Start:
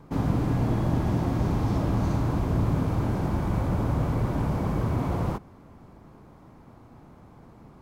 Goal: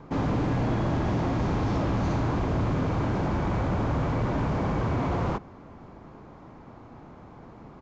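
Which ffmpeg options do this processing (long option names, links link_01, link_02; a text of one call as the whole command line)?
ffmpeg -i in.wav -filter_complex "[0:a]bass=frequency=250:gain=-4,treble=frequency=4000:gain=-6,acrossover=split=1600[link_01][link_02];[link_01]asoftclip=type=tanh:threshold=-27dB[link_03];[link_03][link_02]amix=inputs=2:normalize=0,aresample=16000,aresample=44100,volume=5.5dB" out.wav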